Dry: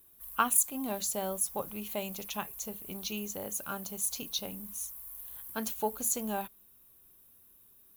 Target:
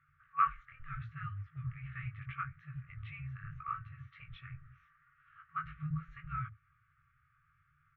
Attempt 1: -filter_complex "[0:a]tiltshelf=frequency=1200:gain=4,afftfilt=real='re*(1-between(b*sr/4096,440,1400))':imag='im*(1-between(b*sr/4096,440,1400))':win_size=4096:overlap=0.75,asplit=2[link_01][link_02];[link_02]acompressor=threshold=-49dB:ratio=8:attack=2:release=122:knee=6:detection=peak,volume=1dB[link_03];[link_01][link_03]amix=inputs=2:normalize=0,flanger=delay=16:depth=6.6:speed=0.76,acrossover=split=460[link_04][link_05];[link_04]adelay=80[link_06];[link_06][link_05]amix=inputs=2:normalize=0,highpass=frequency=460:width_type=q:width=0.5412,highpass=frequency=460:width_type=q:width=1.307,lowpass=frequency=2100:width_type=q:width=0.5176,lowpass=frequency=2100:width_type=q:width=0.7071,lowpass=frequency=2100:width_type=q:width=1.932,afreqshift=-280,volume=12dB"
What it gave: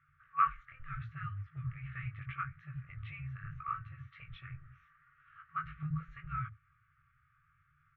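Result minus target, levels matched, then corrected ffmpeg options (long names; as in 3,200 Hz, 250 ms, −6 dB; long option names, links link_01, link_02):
downward compressor: peak gain reduction −7.5 dB
-filter_complex "[0:a]tiltshelf=frequency=1200:gain=4,afftfilt=real='re*(1-between(b*sr/4096,440,1400))':imag='im*(1-between(b*sr/4096,440,1400))':win_size=4096:overlap=0.75,asplit=2[link_01][link_02];[link_02]acompressor=threshold=-57.5dB:ratio=8:attack=2:release=122:knee=6:detection=peak,volume=1dB[link_03];[link_01][link_03]amix=inputs=2:normalize=0,flanger=delay=16:depth=6.6:speed=0.76,acrossover=split=460[link_04][link_05];[link_04]adelay=80[link_06];[link_06][link_05]amix=inputs=2:normalize=0,highpass=frequency=460:width_type=q:width=0.5412,highpass=frequency=460:width_type=q:width=1.307,lowpass=frequency=2100:width_type=q:width=0.5176,lowpass=frequency=2100:width_type=q:width=0.7071,lowpass=frequency=2100:width_type=q:width=1.932,afreqshift=-280,volume=12dB"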